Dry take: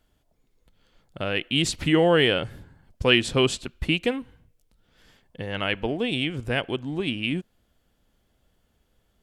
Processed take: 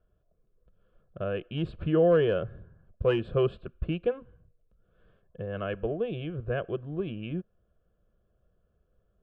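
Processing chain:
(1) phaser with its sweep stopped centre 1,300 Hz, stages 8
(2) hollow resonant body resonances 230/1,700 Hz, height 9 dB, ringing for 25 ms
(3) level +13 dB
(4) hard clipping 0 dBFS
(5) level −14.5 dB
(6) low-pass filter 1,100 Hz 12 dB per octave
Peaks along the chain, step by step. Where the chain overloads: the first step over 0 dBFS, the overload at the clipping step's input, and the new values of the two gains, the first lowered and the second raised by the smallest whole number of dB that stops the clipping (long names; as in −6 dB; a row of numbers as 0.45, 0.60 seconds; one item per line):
−5.5, −5.0, +8.0, 0.0, −14.5, −14.5 dBFS
step 3, 8.0 dB
step 3 +5 dB, step 5 −6.5 dB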